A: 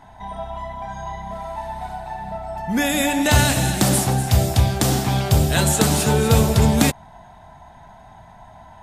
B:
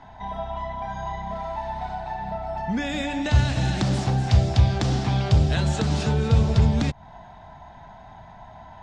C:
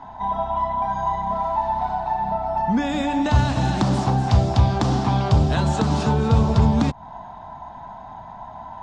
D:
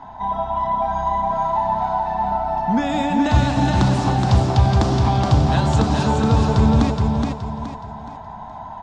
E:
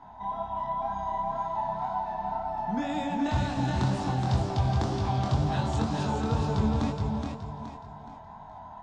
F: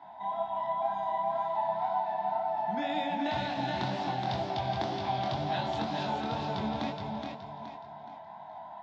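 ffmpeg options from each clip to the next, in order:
-filter_complex "[0:a]lowpass=f=5700:w=0.5412,lowpass=f=5700:w=1.3066,acrossover=split=150[s0][s1];[s1]acompressor=threshold=0.0562:ratio=10[s2];[s0][s2]amix=inputs=2:normalize=0"
-af "equalizer=f=250:t=o:w=1:g=6,equalizer=f=1000:t=o:w=1:g=11,equalizer=f=2000:t=o:w=1:g=-4"
-af "aecho=1:1:421|842|1263|1684|2105:0.631|0.227|0.0818|0.0294|0.0106,volume=1.12"
-af "flanger=delay=20:depth=4.5:speed=2,volume=0.422"
-af "highpass=240,equalizer=f=250:t=q:w=4:g=-6,equalizer=f=450:t=q:w=4:g=-9,equalizer=f=680:t=q:w=4:g=5,equalizer=f=1200:t=q:w=4:g=-7,equalizer=f=2100:t=q:w=4:g=4,equalizer=f=3500:t=q:w=4:g=4,lowpass=f=4900:w=0.5412,lowpass=f=4900:w=1.3066"

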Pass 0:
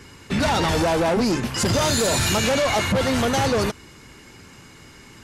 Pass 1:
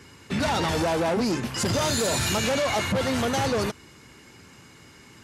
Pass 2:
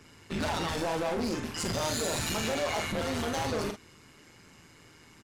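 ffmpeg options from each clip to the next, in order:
-af "highpass=66,volume=0.631"
-af "volume=13.3,asoftclip=hard,volume=0.075,tremolo=f=160:d=0.75,aecho=1:1:41|51:0.422|0.251,volume=0.708"

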